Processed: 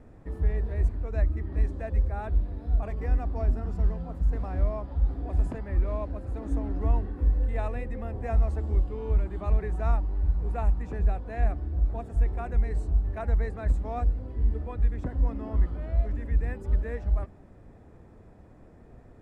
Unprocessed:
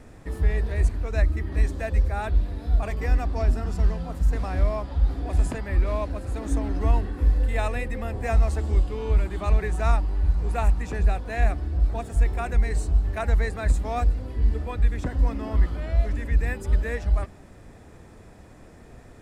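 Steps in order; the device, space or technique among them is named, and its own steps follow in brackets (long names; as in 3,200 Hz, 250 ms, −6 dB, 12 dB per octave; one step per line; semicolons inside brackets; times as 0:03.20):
through cloth (high-shelf EQ 2,000 Hz −16 dB)
level −3.5 dB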